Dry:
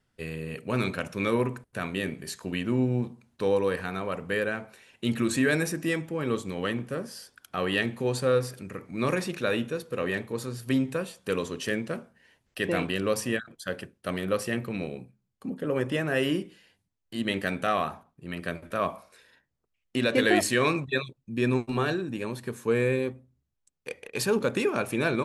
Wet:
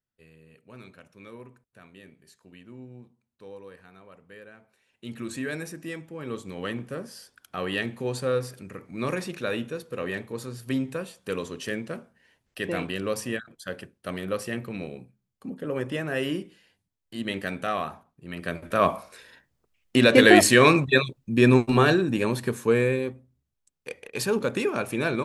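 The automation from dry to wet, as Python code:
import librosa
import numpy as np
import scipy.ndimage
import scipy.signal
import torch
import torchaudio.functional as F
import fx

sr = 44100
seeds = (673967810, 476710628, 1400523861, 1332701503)

y = fx.gain(x, sr, db=fx.line((4.52, -19.0), (5.28, -8.0), (6.07, -8.0), (6.72, -2.0), (18.27, -2.0), (18.9, 8.0), (22.42, 8.0), (23.0, 0.0)))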